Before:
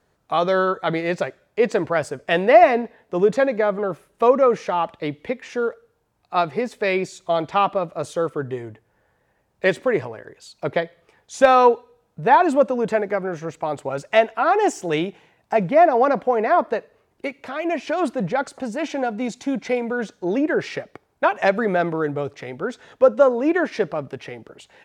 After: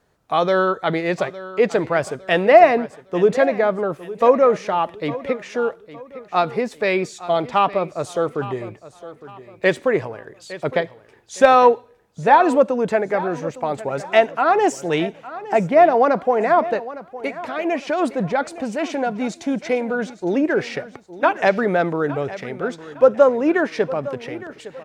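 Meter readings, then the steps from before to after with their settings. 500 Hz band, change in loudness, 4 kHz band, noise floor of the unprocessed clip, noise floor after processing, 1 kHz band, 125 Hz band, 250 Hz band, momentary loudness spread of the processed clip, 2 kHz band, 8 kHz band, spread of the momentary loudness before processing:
+1.5 dB, +1.5 dB, +1.5 dB, -67 dBFS, -50 dBFS, +1.5 dB, +1.5 dB, +1.5 dB, 15 LU, +1.5 dB, +1.5 dB, 14 LU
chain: feedback echo 0.86 s, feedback 35%, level -16 dB; gain +1.5 dB

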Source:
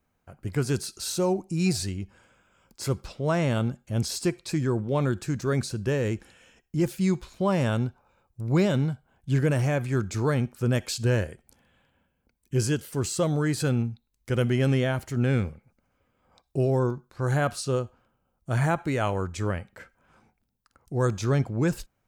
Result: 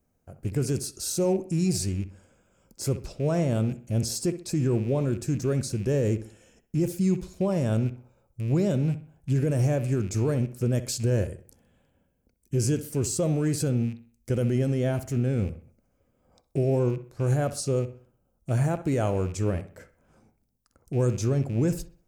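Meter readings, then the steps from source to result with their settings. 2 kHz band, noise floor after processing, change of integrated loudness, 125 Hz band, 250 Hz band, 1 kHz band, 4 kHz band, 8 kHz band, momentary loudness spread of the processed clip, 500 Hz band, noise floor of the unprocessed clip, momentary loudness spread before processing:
-8.5 dB, -72 dBFS, 0.0 dB, +0.5 dB, 0.0 dB, -6.0 dB, -3.5 dB, +2.0 dB, 8 LU, 0.0 dB, -75 dBFS, 9 LU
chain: rattling part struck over -34 dBFS, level -33 dBFS; band shelf 1900 Hz -9.5 dB 2.6 oct; limiter -19.5 dBFS, peak gain reduction 6 dB; on a send: dark delay 64 ms, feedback 36%, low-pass 2700 Hz, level -13 dB; on the sum: gain +2.5 dB

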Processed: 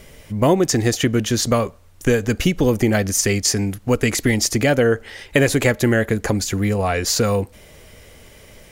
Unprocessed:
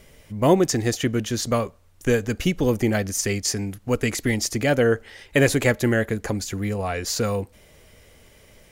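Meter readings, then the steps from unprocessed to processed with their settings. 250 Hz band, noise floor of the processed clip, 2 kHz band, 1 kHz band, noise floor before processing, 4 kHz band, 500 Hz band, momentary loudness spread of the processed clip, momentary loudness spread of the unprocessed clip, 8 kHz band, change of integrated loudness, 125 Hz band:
+4.0 dB, -47 dBFS, +3.5 dB, +3.5 dB, -54 dBFS, +5.5 dB, +3.5 dB, 5 LU, 8 LU, +6.0 dB, +4.0 dB, +4.5 dB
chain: compressor 2.5:1, threshold -21 dBFS, peak gain reduction 7 dB; gain +7 dB

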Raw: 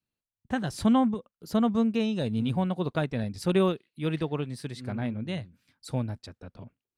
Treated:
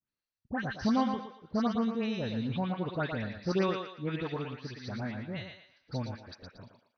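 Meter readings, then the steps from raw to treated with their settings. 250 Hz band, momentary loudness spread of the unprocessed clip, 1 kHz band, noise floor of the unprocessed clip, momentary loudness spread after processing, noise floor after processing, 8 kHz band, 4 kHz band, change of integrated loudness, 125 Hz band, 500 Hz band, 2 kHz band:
-5.5 dB, 13 LU, -2.5 dB, under -85 dBFS, 12 LU, under -85 dBFS, n/a, -3.5 dB, -5.0 dB, -5.5 dB, -5.0 dB, 0.0 dB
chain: rippled Chebyshev low-pass 6100 Hz, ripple 6 dB; dispersion highs, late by 0.103 s, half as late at 2100 Hz; on a send: thinning echo 0.115 s, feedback 37%, high-pass 420 Hz, level -5 dB

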